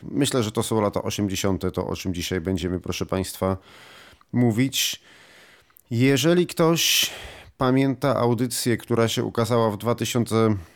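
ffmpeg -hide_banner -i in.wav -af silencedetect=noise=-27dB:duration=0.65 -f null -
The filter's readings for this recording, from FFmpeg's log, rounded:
silence_start: 3.55
silence_end: 4.34 | silence_duration: 0.79
silence_start: 4.95
silence_end: 5.77 | silence_duration: 0.82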